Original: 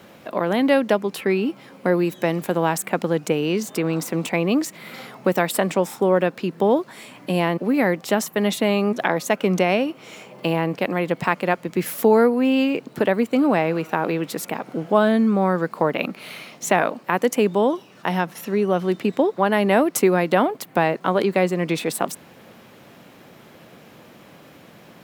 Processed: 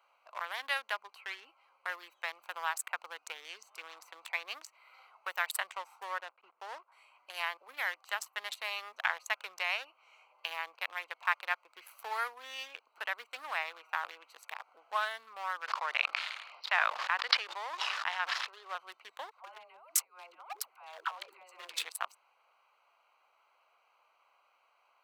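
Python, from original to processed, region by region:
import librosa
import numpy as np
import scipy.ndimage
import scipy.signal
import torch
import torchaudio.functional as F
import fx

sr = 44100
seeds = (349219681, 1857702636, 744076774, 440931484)

y = fx.chain(x, sr, fx.block_float(bits=3),
    fx.spacing_loss(db_at_10k=44), at=(6.18, 6.92))
y = fx.chain(y, sr, fx.highpass(hz=300.0, slope=24),
    fx.resample_bad(factor=4, down='none', up='filtered'),
    fx.sustainer(db_per_s=22.0), at=(15.61, 18.75))
y = fx.chain(y, sr, fx.over_compress(threshold_db=-23.0, ratio=-0.5),
    fx.dispersion(late='lows', ms=147.0, hz=420.0), at=(19.31, 21.85))
y = fx.wiener(y, sr, points=25)
y = scipy.signal.sosfilt(scipy.signal.butter(4, 1100.0, 'highpass', fs=sr, output='sos'), y)
y = F.gain(torch.from_numpy(y), -5.0).numpy()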